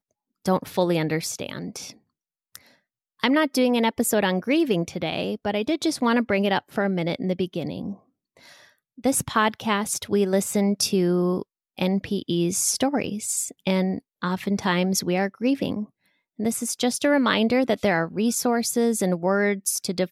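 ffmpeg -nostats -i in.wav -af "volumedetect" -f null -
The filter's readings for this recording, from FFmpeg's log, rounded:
mean_volume: -24.3 dB
max_volume: -6.6 dB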